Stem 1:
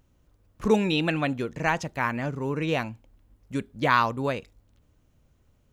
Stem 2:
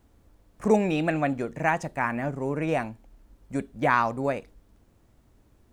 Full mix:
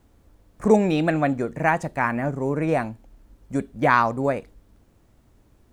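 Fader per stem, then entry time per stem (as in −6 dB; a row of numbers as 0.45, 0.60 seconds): −9.5, +2.5 decibels; 0.00, 0.00 seconds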